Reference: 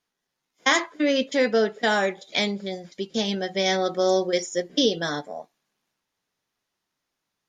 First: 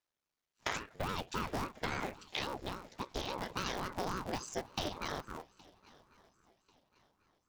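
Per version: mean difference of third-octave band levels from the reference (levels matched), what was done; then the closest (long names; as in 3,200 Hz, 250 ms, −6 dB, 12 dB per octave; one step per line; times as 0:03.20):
13.5 dB: sub-harmonics by changed cycles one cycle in 3, muted
downward compressor, threshold −25 dBFS, peak gain reduction 9 dB
on a send: feedback echo with a long and a short gap by turns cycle 1,091 ms, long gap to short 3 to 1, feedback 35%, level −24 dB
on the sum: ring modulator whose carrier an LFO sweeps 450 Hz, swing 70%, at 3.6 Hz
level −5.5 dB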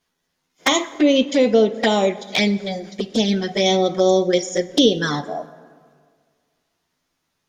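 4.0 dB: low-shelf EQ 210 Hz +5 dB
in parallel at 0 dB: downward compressor 16 to 1, threshold −27 dBFS, peak gain reduction 13.5 dB
on the sum: flanger swept by the level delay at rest 11.9 ms, full sweep at −15.5 dBFS
dense smooth reverb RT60 1.9 s, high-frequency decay 0.5×, DRR 14.5 dB
level +4 dB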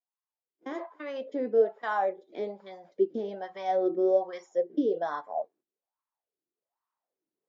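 9.0 dB: camcorder AGC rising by 6.7 dB per second
noise gate −57 dBFS, range −15 dB
in parallel at −1.5 dB: brickwall limiter −17 dBFS, peak gain reduction 9 dB
on the sum: LFO wah 1.2 Hz 330–1,100 Hz, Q 5.9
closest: second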